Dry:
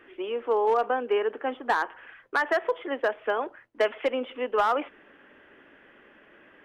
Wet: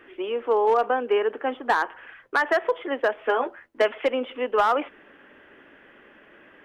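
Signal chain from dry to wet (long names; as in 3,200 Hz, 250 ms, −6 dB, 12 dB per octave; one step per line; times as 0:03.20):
0:03.16–0:03.82: double-tracking delay 12 ms −4 dB
level +3 dB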